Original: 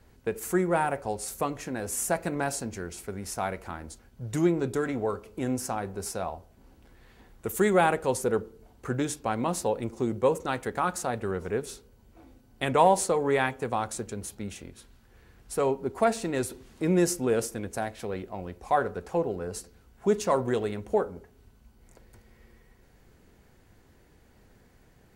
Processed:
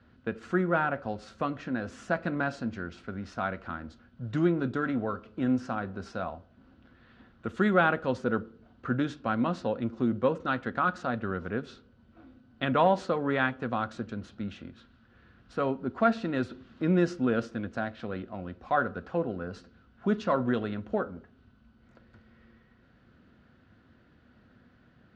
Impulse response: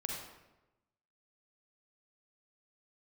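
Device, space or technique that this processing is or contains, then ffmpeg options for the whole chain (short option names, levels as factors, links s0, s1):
guitar cabinet: -af "highpass=76,equalizer=f=240:t=q:w=4:g=6,equalizer=f=420:t=q:w=4:g=-8,equalizer=f=860:t=q:w=4:g=-8,equalizer=f=1400:t=q:w=4:g=7,equalizer=f=2200:t=q:w=4:g=-6,lowpass=f=3900:w=0.5412,lowpass=f=3900:w=1.3066"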